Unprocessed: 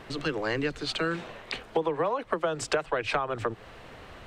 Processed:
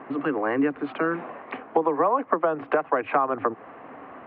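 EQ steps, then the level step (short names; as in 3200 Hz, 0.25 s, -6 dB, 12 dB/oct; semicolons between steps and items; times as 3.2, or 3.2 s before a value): air absorption 380 m; speaker cabinet 230–2400 Hz, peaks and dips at 270 Hz +10 dB, 750 Hz +6 dB, 1100 Hz +7 dB; +4.0 dB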